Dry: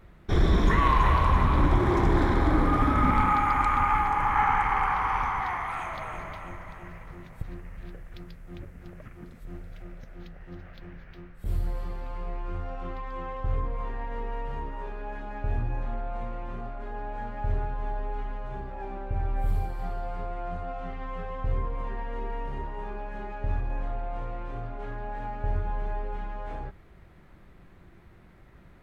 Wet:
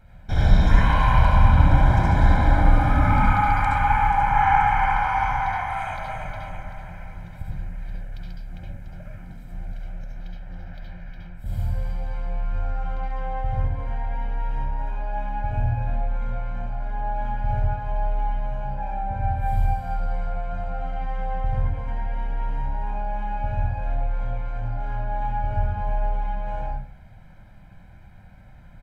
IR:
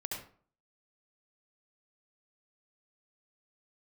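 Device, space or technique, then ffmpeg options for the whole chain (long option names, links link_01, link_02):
microphone above a desk: -filter_complex "[0:a]aecho=1:1:1.3:0.89[link_01];[1:a]atrim=start_sample=2205[link_02];[link_01][link_02]afir=irnorm=-1:irlink=0"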